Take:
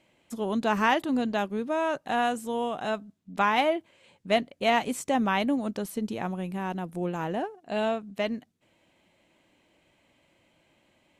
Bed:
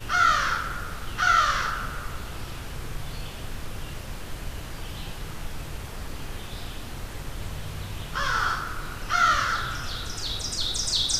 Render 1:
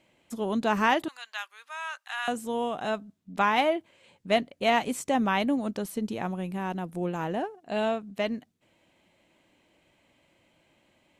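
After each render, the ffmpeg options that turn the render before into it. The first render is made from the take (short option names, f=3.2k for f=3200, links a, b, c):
-filter_complex "[0:a]asettb=1/sr,asplit=3[a][b][c];[a]atrim=end=1.084[d];[b]atrim=start=1.08:end=2.28,asetpts=PTS-STARTPTS,afade=t=in:d=0.004:c=qsin,afade=t=out:st=1.196:d=0.004:c=qsin,highpass=f=1.2k:w=0.5412,highpass=f=1.2k:w=1.3066[e];[c]atrim=start=2.276[f];[d][e]acrossfade=d=0.004:c1=hsin:c2=qsin[g];[g][f]acrossfade=d=0.004:c1=qsin:c2=hsin"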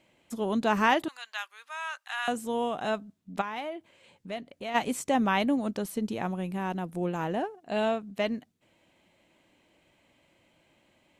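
-filter_complex "[0:a]asplit=3[a][b][c];[a]afade=t=out:st=3.4:d=0.02[d];[b]acompressor=threshold=-42dB:ratio=2:attack=3.2:release=140:knee=1:detection=peak,afade=t=in:st=3.4:d=0.02,afade=t=out:st=4.74:d=0.02[e];[c]afade=t=in:st=4.74:d=0.02[f];[d][e][f]amix=inputs=3:normalize=0"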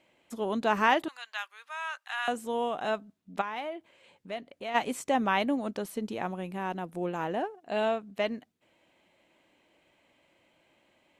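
-af "bass=f=250:g=-7,treble=f=4k:g=-4"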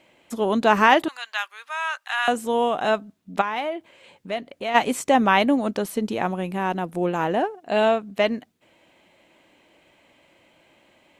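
-af "volume=9dB,alimiter=limit=-3dB:level=0:latency=1"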